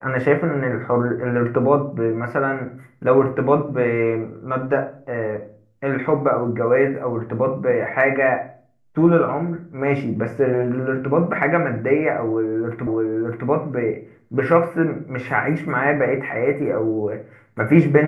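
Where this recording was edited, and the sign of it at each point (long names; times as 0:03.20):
0:12.87: the same again, the last 0.61 s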